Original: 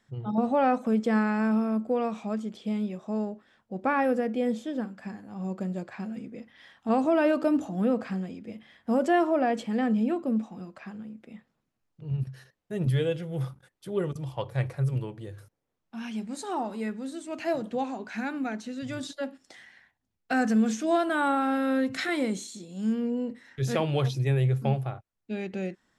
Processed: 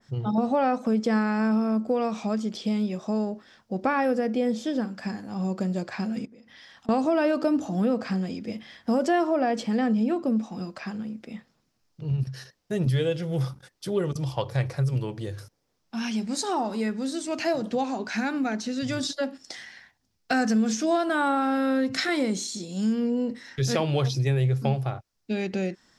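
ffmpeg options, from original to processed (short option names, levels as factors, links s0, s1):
-filter_complex "[0:a]asettb=1/sr,asplit=3[s0][s1][s2];[s0]atrim=end=6.254[s3];[s1]atrim=start=6.25:end=6.89,asetpts=PTS-STARTPTS,afade=t=in:d=0.004:c=qsin,afade=t=out:st=0.636:d=0.004:c=qsin,acompressor=threshold=0.002:ratio=16:attack=3.2:release=140:knee=1:detection=peak[s4];[s2]atrim=start=6.886[s5];[s3][s4]acrossfade=d=0.004:c1=hsin:c2=qsin[s6];[s6][s5]acrossfade=d=0.004:c1=qsin:c2=hsin,equalizer=f=5200:t=o:w=0.74:g=11,acompressor=threshold=0.0251:ratio=2,adynamicequalizer=threshold=0.00562:dfrequency=2000:dqfactor=0.7:tfrequency=2000:tqfactor=0.7:attack=5:release=100:ratio=0.375:range=2:mode=cutabove:tftype=highshelf,volume=2.24"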